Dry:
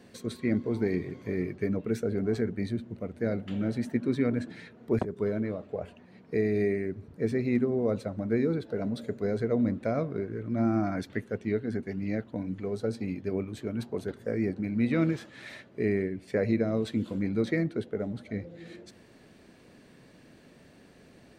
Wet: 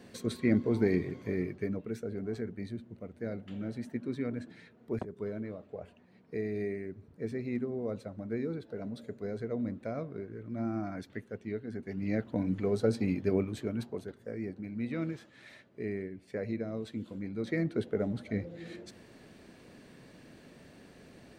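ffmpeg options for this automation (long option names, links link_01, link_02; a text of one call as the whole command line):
ffmpeg -i in.wav -af "volume=22dB,afade=type=out:start_time=0.94:duration=0.97:silence=0.354813,afade=type=in:start_time=11.75:duration=0.69:silence=0.281838,afade=type=out:start_time=13.29:duration=0.82:silence=0.251189,afade=type=in:start_time=17.38:duration=0.48:silence=0.316228" out.wav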